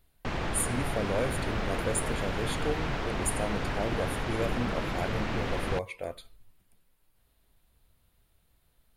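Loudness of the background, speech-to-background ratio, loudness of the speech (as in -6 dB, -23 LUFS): -33.5 LUFS, -1.0 dB, -34.5 LUFS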